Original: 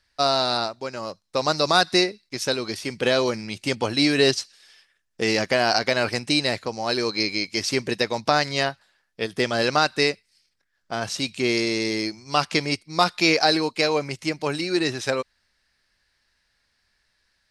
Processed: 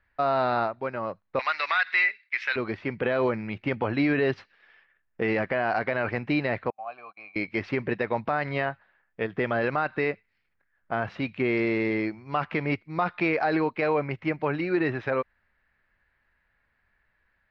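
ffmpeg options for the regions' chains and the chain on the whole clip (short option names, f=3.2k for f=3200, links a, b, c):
-filter_complex "[0:a]asettb=1/sr,asplit=3[a][b][c];[a]atrim=end=1.394[d];[b]atrim=start=1.39:end=2.56,asetpts=PTS-STARTPTS,afade=t=in:d=0.004:c=qsin,afade=t=out:st=1.166:d=0.004:c=qsin,acontrast=85,highpass=f=2.1k:t=q:w=2.6[e];[c]atrim=start=2.556[f];[d][e]acrossfade=d=0.004:c1=hsin:c2=qsin[g];[g][f]acrossfade=d=0.004:c1=qsin:c2=hsin,asettb=1/sr,asplit=3[h][i][j];[h]atrim=end=6.704[k];[i]atrim=start=6.7:end=7.36,asetpts=PTS-STARTPTS,afade=t=in:d=0.004:c=qsin,afade=t=out:st=0.656:d=0.004:c=qsin,asplit=3[l][m][n];[l]bandpass=f=730:t=q:w=8,volume=0dB[o];[m]bandpass=f=1.09k:t=q:w=8,volume=-6dB[p];[n]bandpass=f=2.44k:t=q:w=8,volume=-9dB[q];[o][p][q]amix=inputs=3:normalize=0,equalizer=f=390:w=1.2:g=-14.5,agate=range=-30dB:threshold=-50dB:ratio=16:release=100:detection=peak[r];[j]atrim=start=7.356[s];[k][r]acrossfade=d=0.004:c1=hsin:c2=qsin[t];[t][s]acrossfade=d=0.004:c1=qsin:c2=hsin,lowpass=f=2.2k:w=0.5412,lowpass=f=2.2k:w=1.3066,equalizer=f=330:t=o:w=1.8:g=-2.5,alimiter=limit=-16.5dB:level=0:latency=1:release=45,volume=2dB"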